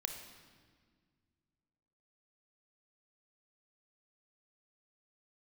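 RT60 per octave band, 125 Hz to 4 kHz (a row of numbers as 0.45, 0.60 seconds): 2.7, 2.6, 1.9, 1.6, 1.6, 1.4 seconds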